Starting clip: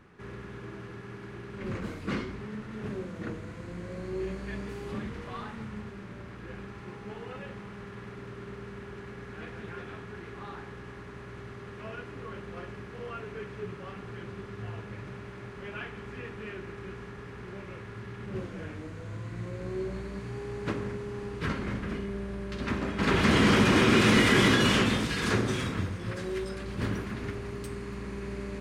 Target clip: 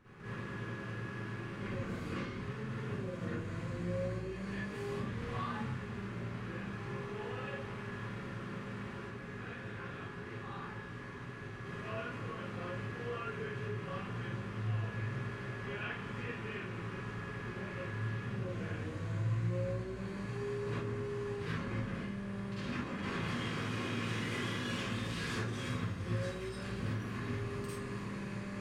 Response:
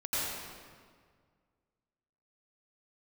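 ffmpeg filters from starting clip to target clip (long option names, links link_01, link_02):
-filter_complex "[0:a]acompressor=threshold=-36dB:ratio=12,asplit=3[link_01][link_02][link_03];[link_01]afade=type=out:start_time=9:duration=0.02[link_04];[link_02]flanger=delay=19:depth=5.6:speed=2.8,afade=type=in:start_time=9:duration=0.02,afade=type=out:start_time=11.59:duration=0.02[link_05];[link_03]afade=type=in:start_time=11.59:duration=0.02[link_06];[link_04][link_05][link_06]amix=inputs=3:normalize=0[link_07];[1:a]atrim=start_sample=2205,afade=type=out:start_time=0.29:duration=0.01,atrim=end_sample=13230,asetrate=83790,aresample=44100[link_08];[link_07][link_08]afir=irnorm=-1:irlink=0,volume=1dB"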